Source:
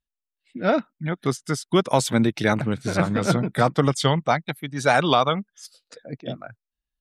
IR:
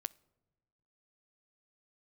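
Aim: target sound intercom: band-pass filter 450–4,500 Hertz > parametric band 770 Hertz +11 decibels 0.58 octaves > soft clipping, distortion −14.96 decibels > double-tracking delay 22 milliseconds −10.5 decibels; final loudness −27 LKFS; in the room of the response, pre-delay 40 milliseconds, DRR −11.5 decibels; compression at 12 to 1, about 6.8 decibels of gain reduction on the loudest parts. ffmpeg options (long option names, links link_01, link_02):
-filter_complex "[0:a]acompressor=threshold=-20dB:ratio=12,asplit=2[link_01][link_02];[1:a]atrim=start_sample=2205,adelay=40[link_03];[link_02][link_03]afir=irnorm=-1:irlink=0,volume=13.5dB[link_04];[link_01][link_04]amix=inputs=2:normalize=0,highpass=450,lowpass=4500,equalizer=frequency=770:width_type=o:width=0.58:gain=11,asoftclip=threshold=-3dB,asplit=2[link_05][link_06];[link_06]adelay=22,volume=-10.5dB[link_07];[link_05][link_07]amix=inputs=2:normalize=0,volume=-11dB"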